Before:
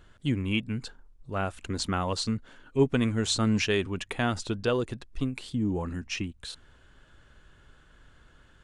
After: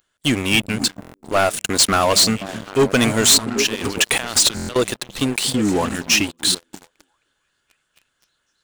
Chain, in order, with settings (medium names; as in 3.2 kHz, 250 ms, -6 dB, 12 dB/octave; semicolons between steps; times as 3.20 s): 3.36–4.76 s: compressor with a negative ratio -38 dBFS, ratio -1; RIAA curve recording; on a send: repeats whose band climbs or falls 263 ms, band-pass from 150 Hz, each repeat 0.7 oct, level -5 dB; on the sum: dynamic bell 630 Hz, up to +7 dB, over -52 dBFS, Q 5.1; waveshaping leveller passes 5; buffer glitch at 1.00/4.55 s, samples 1024, times 5; trim -2 dB